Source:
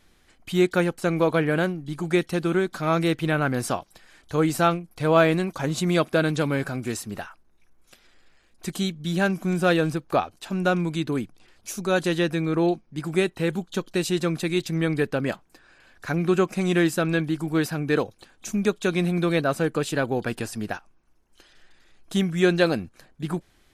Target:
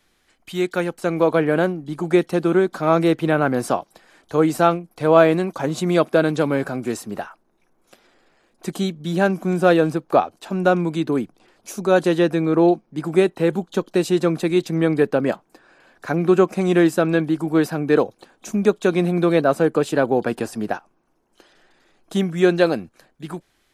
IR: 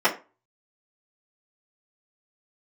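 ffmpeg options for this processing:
-filter_complex "[0:a]lowshelf=f=210:g=-8.5,acrossover=split=130|1100[a][b][c];[b]dynaudnorm=f=200:g=11:m=11dB[d];[a][d][c]amix=inputs=3:normalize=0,volume=-1dB"

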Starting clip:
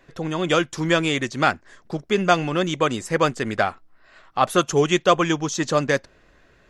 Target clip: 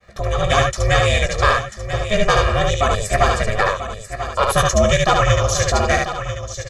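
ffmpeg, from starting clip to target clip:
-filter_complex "[0:a]equalizer=f=2.9k:w=6.5:g=-9.5,acontrast=67,aeval=exprs='val(0)*sin(2*PI*210*n/s)':c=same,asplit=2[a][b];[b]aecho=0:1:17|73:0.316|0.708[c];[a][c]amix=inputs=2:normalize=0,agate=range=-33dB:threshold=-52dB:ratio=3:detection=peak,equalizer=f=350:w=0.64:g=-5.5,aecho=1:1:1.7:0.79,asplit=2[d][e];[e]aecho=0:1:990:0.299[f];[d][f]amix=inputs=2:normalize=0"

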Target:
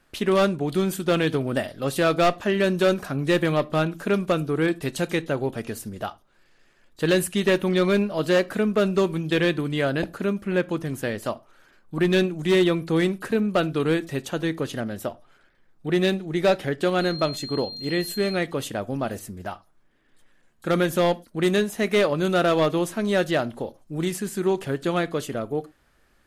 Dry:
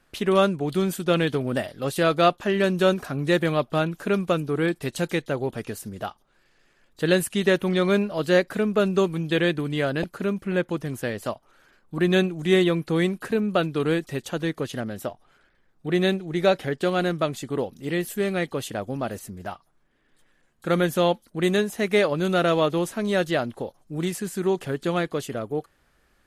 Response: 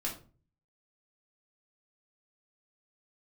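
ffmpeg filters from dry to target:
-filter_complex "[0:a]volume=15dB,asoftclip=hard,volume=-15dB,asettb=1/sr,asplit=3[a][b][c];[a]atrim=end=17.014[d];[b]atrim=start=17.01:end=18.36,asetpts=PTS-STARTPTS,afade=t=in:d=0.004:c=qsin,afade=t=out:st=1.346:d=0.004:c=qsin,aeval=exprs='val(0)+0.0178*sin(2*PI*4200*n/s)':c=same[e];[c]atrim=start=18.356[f];[d][e]acrossfade=d=0.004:c1=hsin:c2=qsin[g];[g][f]acrossfade=d=0.004:c1=qsin:c2=hsin,asplit=2[h][i];[1:a]atrim=start_sample=2205,afade=t=out:st=0.17:d=0.01,atrim=end_sample=7938[j];[i][j]afir=irnorm=-1:irlink=0,volume=-16dB[k];[h][k]amix=inputs=2:normalize=0"

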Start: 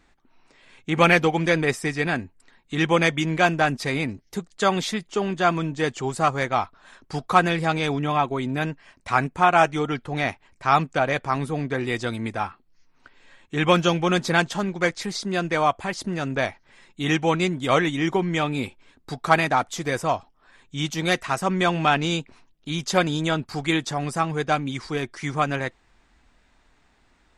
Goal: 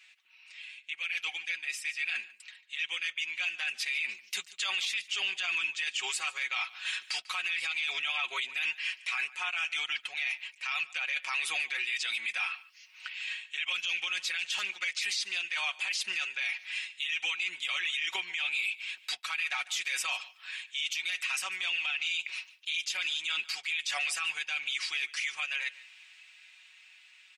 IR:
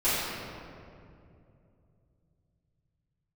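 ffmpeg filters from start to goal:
-filter_complex "[0:a]highpass=f=2.6k:t=q:w=4.4,areverse,acompressor=threshold=-32dB:ratio=20,areverse,aecho=1:1:5.4:0.68,dynaudnorm=f=780:g=9:m=9.5dB,alimiter=level_in=1dB:limit=-24dB:level=0:latency=1:release=80,volume=-1dB,asplit=2[a][b];[b]aecho=0:1:146:0.1[c];[a][c]amix=inputs=2:normalize=0,volume=2dB"

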